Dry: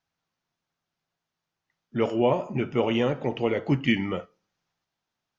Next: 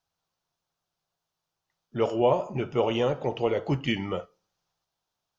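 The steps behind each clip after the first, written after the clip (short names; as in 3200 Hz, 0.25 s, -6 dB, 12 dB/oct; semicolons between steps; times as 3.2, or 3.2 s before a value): ten-band EQ 125 Hz -3 dB, 250 Hz -9 dB, 2000 Hz -9 dB; gain +3 dB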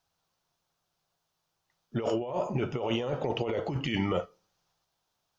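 negative-ratio compressor -30 dBFS, ratio -1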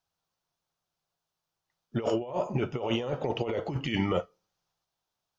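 upward expander 1.5:1, over -42 dBFS; gain +2 dB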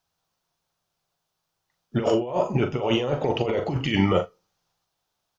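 doubler 41 ms -9 dB; gain +6 dB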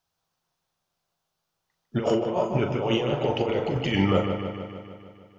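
dark delay 0.152 s, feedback 64%, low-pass 3700 Hz, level -7 dB; gain -2 dB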